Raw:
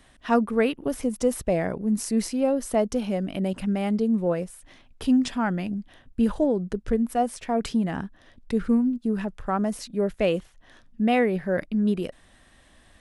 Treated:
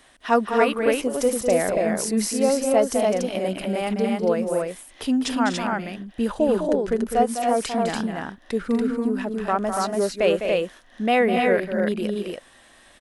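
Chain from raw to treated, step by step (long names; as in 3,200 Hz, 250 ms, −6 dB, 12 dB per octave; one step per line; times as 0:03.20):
bass and treble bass −12 dB, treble +1 dB
loudspeakers that aren't time-aligned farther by 70 metres −8 dB, 84 metres −11 dB, 98 metres −3 dB
level +4 dB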